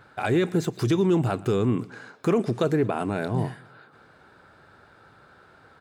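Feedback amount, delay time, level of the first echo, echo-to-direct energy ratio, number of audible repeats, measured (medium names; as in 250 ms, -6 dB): 49%, 117 ms, -22.5 dB, -21.5 dB, 3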